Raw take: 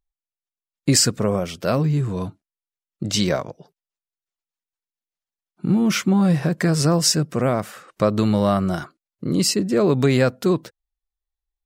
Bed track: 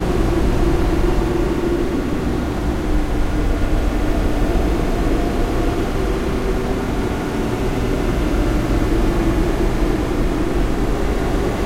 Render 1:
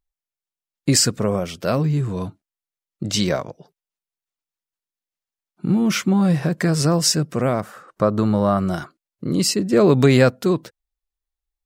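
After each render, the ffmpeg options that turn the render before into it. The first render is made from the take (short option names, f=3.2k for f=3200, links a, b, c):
-filter_complex "[0:a]asettb=1/sr,asplit=3[a][b][c];[a]atrim=end=7.614[d];[b]atrim=start=7.61:end=8.58,asetpts=PTS-STARTPTS,afade=t=in:d=0.004:c=qsin,afade=t=out:st=0.966:d=0.004:c=qsin,highshelf=f=1.8k:t=q:w=1.5:g=-6.5[e];[c]atrim=start=8.576[f];[d][e]acrossfade=d=0.004:c1=hsin:c2=qsin[g];[g][f]acrossfade=d=0.004:c1=qsin:c2=hsin,asplit=3[h][i][j];[h]atrim=end=9.732[k];[i]atrim=start=9.728:end=10.302,asetpts=PTS-STARTPTS,volume=3.5dB[l];[j]atrim=start=10.298[m];[k][l]acrossfade=d=0.004:c1=hsin:c2=hsin[n];[n][m]acrossfade=d=0.004:c1=hsin:c2=hsin"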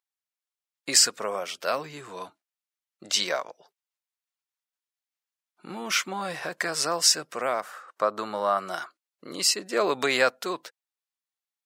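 -af "highpass=780,highshelf=f=9.1k:g=-4"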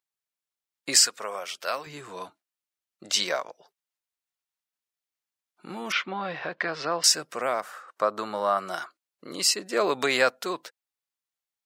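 -filter_complex "[0:a]asettb=1/sr,asplit=3[a][b][c];[a]atrim=end=1.004[d];[b]atrim=start=1:end=1.87,asetpts=PTS-STARTPTS,afade=t=in:d=0.004:c=qsin,afade=t=out:st=0.866:d=0.004:c=qsin,lowshelf=f=440:g=-12[e];[c]atrim=start=1.866[f];[d][e]acrossfade=d=0.004:c1=hsin:c2=qsin[g];[g][f]acrossfade=d=0.004:c1=qsin:c2=hsin,asettb=1/sr,asplit=3[h][i][j];[h]atrim=end=5.924[k];[i]atrim=start=5.92:end=7.04,asetpts=PTS-STARTPTS,afade=t=in:d=0.004:c=qsin,afade=t=out:st=1.116:d=0.004:c=qsin,lowpass=f=3.8k:w=0.5412,lowpass=f=3.8k:w=1.3066[l];[j]atrim=start=7.036[m];[k][l]acrossfade=d=0.004:c1=hsin:c2=qsin[n];[n][m]acrossfade=d=0.004:c1=qsin:c2=hsin"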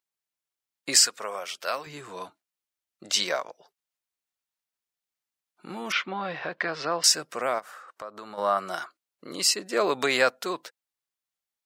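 -filter_complex "[0:a]asplit=3[a][b][c];[a]afade=t=out:st=7.58:d=0.02[d];[b]acompressor=threshold=-41dB:ratio=2.5:attack=3.2:release=140:knee=1:detection=peak,afade=t=in:st=7.58:d=0.02,afade=t=out:st=8.37:d=0.02[e];[c]afade=t=in:st=8.37:d=0.02[f];[d][e][f]amix=inputs=3:normalize=0"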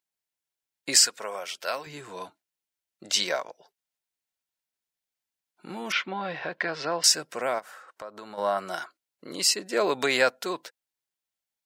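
-af "bandreject=f=1.2k:w=7.8"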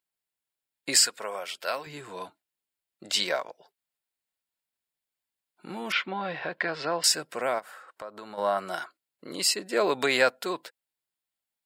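-af "equalizer=f=6k:t=o:w=0.24:g=-9.5"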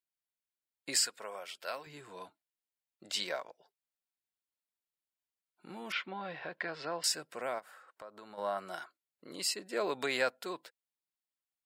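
-af "volume=-9dB"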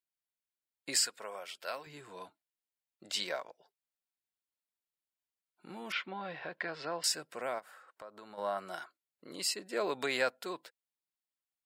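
-af anull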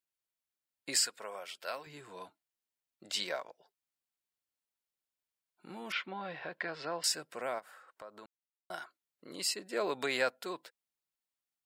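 -filter_complex "[0:a]asplit=3[a][b][c];[a]atrim=end=8.26,asetpts=PTS-STARTPTS,afade=t=out:st=8.256:d=0.004:c=hsin[d];[b]atrim=start=8.26:end=8.7,asetpts=PTS-STARTPTS,volume=0[e];[c]atrim=start=8.7,asetpts=PTS-STARTPTS,afade=t=in:d=0.004:c=hsin[f];[d][e][f]concat=n=3:v=0:a=1"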